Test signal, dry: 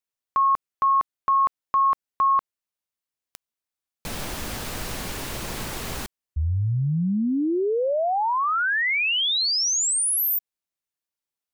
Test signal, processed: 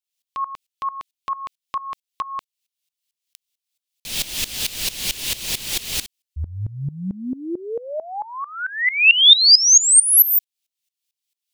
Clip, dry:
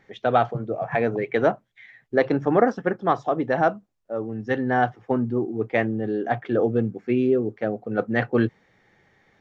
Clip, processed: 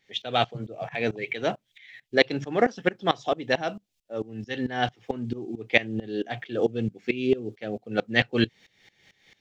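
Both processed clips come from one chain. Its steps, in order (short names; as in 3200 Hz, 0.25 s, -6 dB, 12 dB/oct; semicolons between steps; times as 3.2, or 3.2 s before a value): resonant high shelf 2000 Hz +14 dB, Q 1.5; dB-ramp tremolo swelling 4.5 Hz, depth 19 dB; gain +1.5 dB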